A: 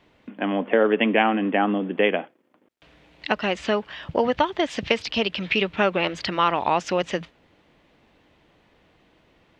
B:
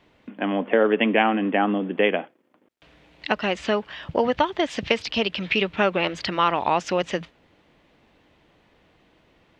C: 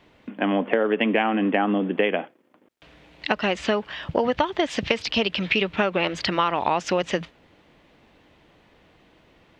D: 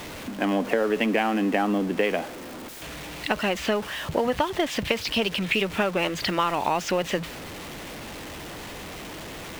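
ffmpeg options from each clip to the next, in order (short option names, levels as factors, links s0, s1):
-af anull
-af "acompressor=threshold=0.1:ratio=6,volume=1.41"
-af "aeval=exprs='val(0)+0.5*0.0335*sgn(val(0))':c=same,volume=0.708"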